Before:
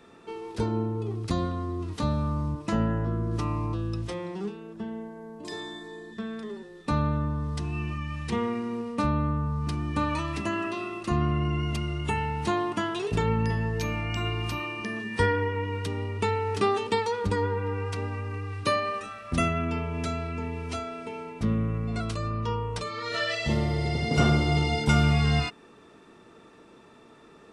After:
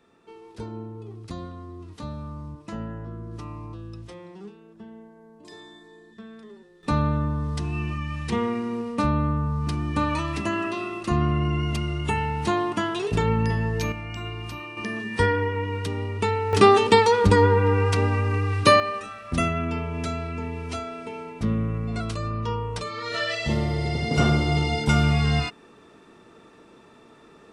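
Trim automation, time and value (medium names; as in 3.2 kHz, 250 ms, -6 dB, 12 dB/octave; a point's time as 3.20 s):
-8 dB
from 6.83 s +3 dB
from 13.92 s -4 dB
from 14.77 s +2.5 dB
from 16.53 s +10 dB
from 18.80 s +1.5 dB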